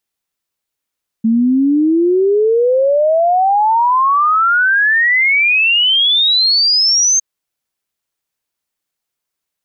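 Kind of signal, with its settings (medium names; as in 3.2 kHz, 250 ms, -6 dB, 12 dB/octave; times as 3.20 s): log sweep 220 Hz -> 6.4 kHz 5.96 s -9 dBFS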